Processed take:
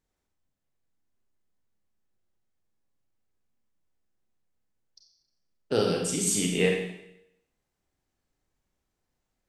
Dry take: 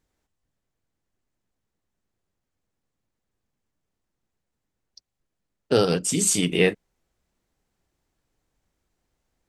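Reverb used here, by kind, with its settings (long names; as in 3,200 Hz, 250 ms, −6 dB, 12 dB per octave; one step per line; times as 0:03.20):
four-comb reverb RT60 0.82 s, combs from 30 ms, DRR 1 dB
level −7 dB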